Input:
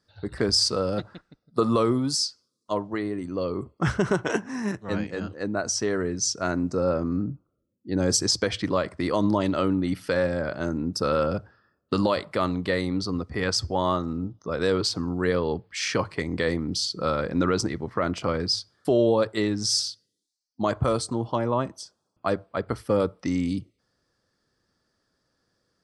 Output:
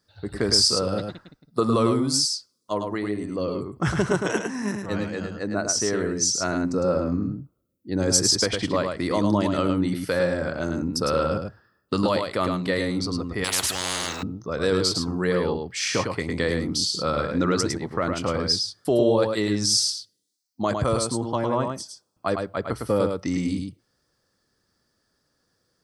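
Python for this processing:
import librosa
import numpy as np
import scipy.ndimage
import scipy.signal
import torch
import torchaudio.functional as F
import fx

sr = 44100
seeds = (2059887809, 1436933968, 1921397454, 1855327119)

y = fx.high_shelf(x, sr, hz=9300.0, db=12.0)
y = y + 10.0 ** (-5.0 / 20.0) * np.pad(y, (int(106 * sr / 1000.0), 0))[:len(y)]
y = fx.spectral_comp(y, sr, ratio=10.0, at=(13.44, 14.23))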